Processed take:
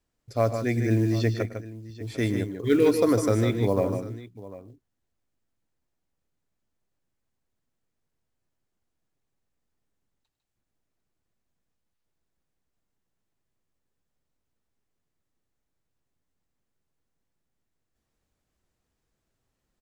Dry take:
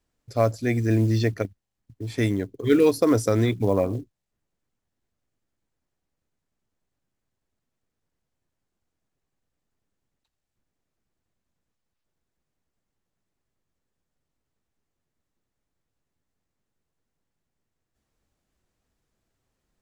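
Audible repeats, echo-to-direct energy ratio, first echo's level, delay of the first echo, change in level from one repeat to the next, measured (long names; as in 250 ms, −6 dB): 3, −6.5 dB, −17.0 dB, 103 ms, repeats not evenly spaced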